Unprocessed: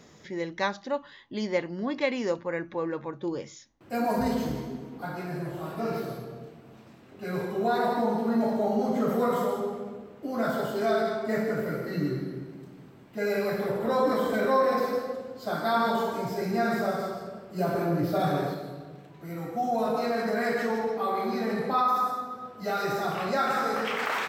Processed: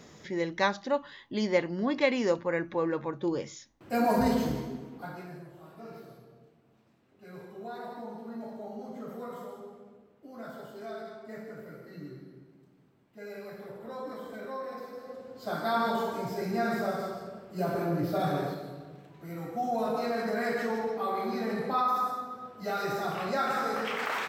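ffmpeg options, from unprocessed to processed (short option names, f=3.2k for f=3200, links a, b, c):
-af "volume=13.5dB,afade=t=out:st=4.28:d=0.77:silence=0.473151,afade=t=out:st=5.05:d=0.43:silence=0.316228,afade=t=in:st=14.96:d=0.54:silence=0.251189"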